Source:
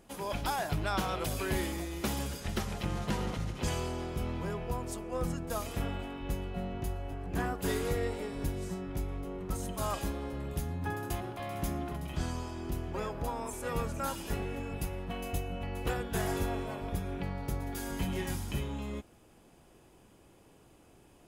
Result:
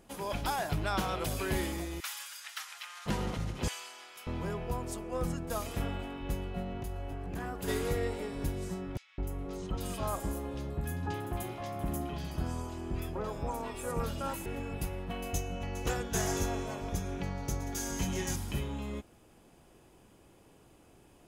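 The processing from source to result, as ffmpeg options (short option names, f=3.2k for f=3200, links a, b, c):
-filter_complex "[0:a]asettb=1/sr,asplit=3[a][b][c];[a]atrim=end=2.004[d];[b]atrim=start=2:end=3.06,asetpts=PTS-STARTPTS,afade=t=in:d=0.004:c=qsin,afade=t=out:st=1.056:d=0.004:c=qsin,highpass=f=1.2k:w=0.5412,highpass=f=1.2k:w=1.3066[e];[c]atrim=start=3.056[f];[d][e]acrossfade=d=0.004:c1=hsin:c2=qsin[g];[g][f]acrossfade=d=0.004:c1=qsin:c2=hsin,asettb=1/sr,asplit=3[h][i][j];[h]atrim=end=3.684[k];[i]atrim=start=3.68:end=4.27,asetpts=PTS-STARTPTS,afade=t=in:d=0.004:c=qsin,afade=t=out:st=0.586:d=0.004:c=qsin,highpass=1.5k[l];[j]atrim=start=4.266[m];[k][l]acrossfade=d=0.004:c1=hsin:c2=qsin[n];[n][m]acrossfade=d=0.004:c1=qsin:c2=hsin,asplit=3[o][p][q];[o]afade=t=out:st=6.62:d=0.02[r];[p]acompressor=threshold=-33dB:ratio=6:attack=3.2:release=140:knee=1:detection=peak,afade=t=in:st=6.62:d=0.02,afade=t=out:st=7.67:d=0.02[s];[q]afade=t=in:st=7.67:d=0.02[t];[r][s][t]amix=inputs=3:normalize=0,asettb=1/sr,asplit=3[u][v][w];[u]atrim=end=8.974[x];[v]atrim=start=8.97:end=14.46,asetpts=PTS-STARTPTS,afade=t=in:d=0.004:c=qsin,afade=t=out:st=5.486:d=0.004:c=qsin,acrossover=split=1800|5900[y][z][aa];[y]adelay=210[ab];[aa]adelay=300[ac];[ab][z][ac]amix=inputs=3:normalize=0,atrim=end_sample=242109[ad];[w]atrim=start=14.456[ae];[x][ad]acrossfade=d=0.004:c1=hsin:c2=qsin[af];[af][ae]acrossfade=d=0.004:c1=qsin:c2=hsin,asettb=1/sr,asplit=3[ag][ah][ai];[ag]atrim=end=15.344[aj];[ah]atrim=start=15.34:end=18.36,asetpts=PTS-STARTPTS,afade=t=in:d=0.004:c=qsin,afade=t=out:st=3.016:d=0.004:c=qsin,equalizer=f=6.3k:t=o:w=0.49:g=14.5[ak];[ai]atrim=start=18.356[al];[aj][ak]acrossfade=d=0.004:c1=hsin:c2=qsin[am];[am][al]acrossfade=d=0.004:c1=qsin:c2=hsin"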